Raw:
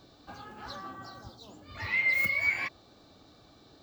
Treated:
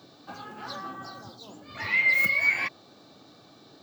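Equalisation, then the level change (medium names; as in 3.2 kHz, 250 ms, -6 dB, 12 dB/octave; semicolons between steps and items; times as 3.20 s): high-pass 120 Hz 24 dB/octave; +4.5 dB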